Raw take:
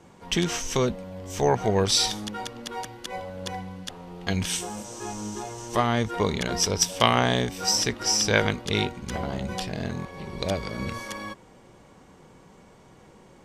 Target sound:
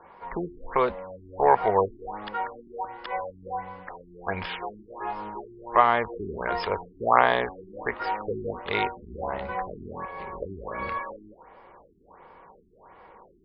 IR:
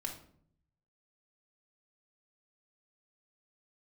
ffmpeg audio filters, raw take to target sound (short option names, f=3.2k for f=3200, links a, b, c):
-af "equalizer=f=125:t=o:w=1:g=-11,equalizer=f=250:t=o:w=1:g=-6,equalizer=f=500:t=o:w=1:g=4,equalizer=f=1k:t=o:w=1:g=11,equalizer=f=2k:t=o:w=1:g=6,equalizer=f=4k:t=o:w=1:g=-5,equalizer=f=8k:t=o:w=1:g=-9,afftfilt=real='re*lt(b*sr/1024,390*pow(5400/390,0.5+0.5*sin(2*PI*1.4*pts/sr)))':imag='im*lt(b*sr/1024,390*pow(5400/390,0.5+0.5*sin(2*PI*1.4*pts/sr)))':win_size=1024:overlap=0.75,volume=-3dB"